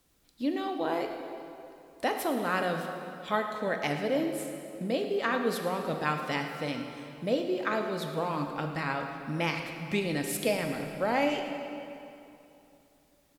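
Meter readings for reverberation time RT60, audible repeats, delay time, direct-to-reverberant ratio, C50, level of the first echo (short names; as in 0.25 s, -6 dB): 2.9 s, 1, 0.11 s, 4.0 dB, 5.0 dB, -14.5 dB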